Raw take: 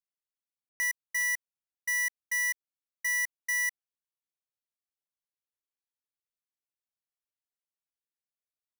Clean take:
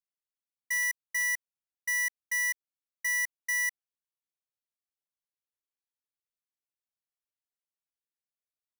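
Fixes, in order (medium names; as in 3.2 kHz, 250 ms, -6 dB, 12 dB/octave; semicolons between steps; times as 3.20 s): room tone fill 0.69–0.80 s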